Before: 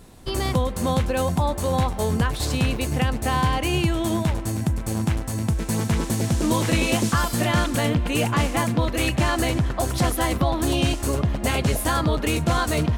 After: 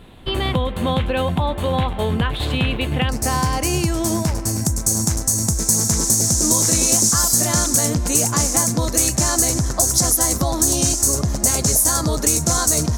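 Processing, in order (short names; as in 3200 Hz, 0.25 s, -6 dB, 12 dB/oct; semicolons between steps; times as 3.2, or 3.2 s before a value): resonant high shelf 4300 Hz -8.5 dB, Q 3, from 3.09 s +7 dB, from 4.65 s +13.5 dB; compressor 2:1, threshold -20 dBFS, peak gain reduction 5.5 dB; gain +3.5 dB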